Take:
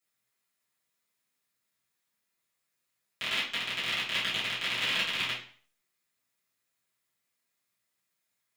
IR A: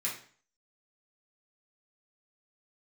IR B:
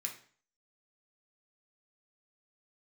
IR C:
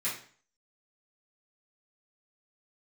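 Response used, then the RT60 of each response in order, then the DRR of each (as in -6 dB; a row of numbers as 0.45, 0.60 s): C; 0.45, 0.45, 0.45 s; -6.5, 0.5, -11.5 dB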